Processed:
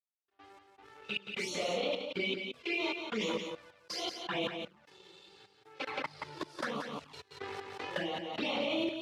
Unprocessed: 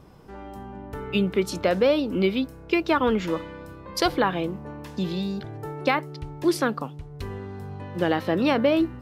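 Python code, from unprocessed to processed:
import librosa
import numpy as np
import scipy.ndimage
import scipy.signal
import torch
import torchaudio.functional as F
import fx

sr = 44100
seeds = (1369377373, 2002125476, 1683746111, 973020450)

y = fx.phase_scramble(x, sr, seeds[0], window_ms=200)
y = fx.tilt_eq(y, sr, slope=4.0)
y = fx.transient(y, sr, attack_db=3, sustain_db=7)
y = fx.level_steps(y, sr, step_db=15)
y = np.sign(y) * np.maximum(np.abs(y) - 10.0 ** (-45.5 / 20.0), 0.0)
y = fx.step_gate(y, sr, bpm=77, pattern='x.x.xx.xx', floor_db=-24.0, edge_ms=4.5)
y = fx.env_flanger(y, sr, rest_ms=2.8, full_db=-27.5)
y = fx.bandpass_edges(y, sr, low_hz=110.0, high_hz=4400.0)
y = y + 10.0 ** (-6.5 / 20.0) * np.pad(y, (int(176 * sr / 1000.0), 0))[:len(y)]
y = fx.band_squash(y, sr, depth_pct=100, at=(5.87, 8.41))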